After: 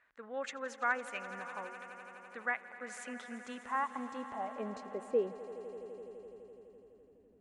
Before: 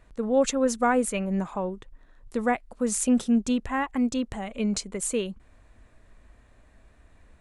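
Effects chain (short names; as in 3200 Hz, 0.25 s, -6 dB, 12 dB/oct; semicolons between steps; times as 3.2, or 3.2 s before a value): band-pass sweep 1700 Hz -> 260 Hz, 3.21–6.08; swelling echo 84 ms, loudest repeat 5, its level -17.5 dB; gain -1 dB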